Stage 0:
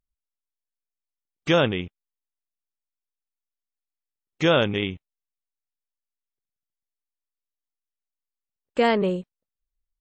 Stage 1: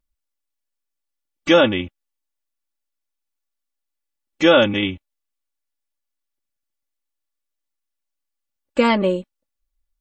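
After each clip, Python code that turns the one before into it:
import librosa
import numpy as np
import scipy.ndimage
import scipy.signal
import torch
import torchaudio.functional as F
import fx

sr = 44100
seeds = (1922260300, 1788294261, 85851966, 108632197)

y = x + 0.91 * np.pad(x, (int(3.5 * sr / 1000.0), 0))[:len(x)]
y = y * 10.0 ** (3.0 / 20.0)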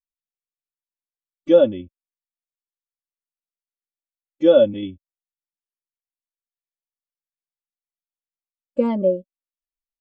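y = fx.peak_eq(x, sr, hz=2000.0, db=-9.0, octaves=2.6)
y = fx.small_body(y, sr, hz=(560.0, 3400.0), ring_ms=45, db=7)
y = fx.spectral_expand(y, sr, expansion=1.5)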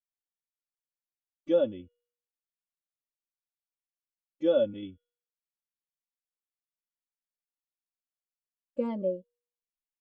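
y = fx.comb_fb(x, sr, f0_hz=480.0, decay_s=0.68, harmonics='all', damping=0.0, mix_pct=40)
y = y * 10.0 ** (-7.0 / 20.0)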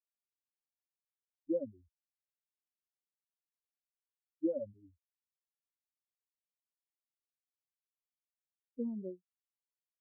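y = fx.bin_expand(x, sr, power=3.0)
y = fx.ladder_lowpass(y, sr, hz=470.0, resonance_pct=35)
y = y * 10.0 ** (2.5 / 20.0)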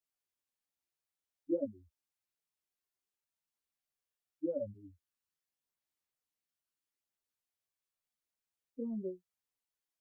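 y = fx.chorus_voices(x, sr, voices=2, hz=0.42, base_ms=12, depth_ms=2.0, mix_pct=50)
y = y * 10.0 ** (5.5 / 20.0)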